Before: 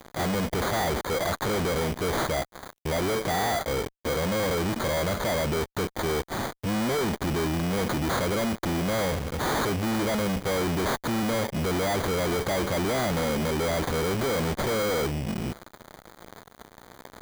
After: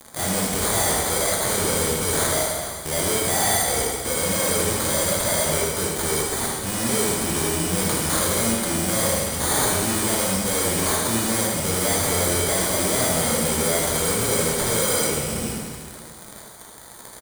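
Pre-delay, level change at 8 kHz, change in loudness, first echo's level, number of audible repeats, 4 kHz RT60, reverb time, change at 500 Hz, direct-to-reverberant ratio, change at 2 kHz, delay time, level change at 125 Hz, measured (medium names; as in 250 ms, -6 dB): 6 ms, +17.0 dB, +6.5 dB, -5.5 dB, 1, 1.9 s, 2.0 s, +2.5 dB, -3.0 dB, +4.0 dB, 78 ms, +1.5 dB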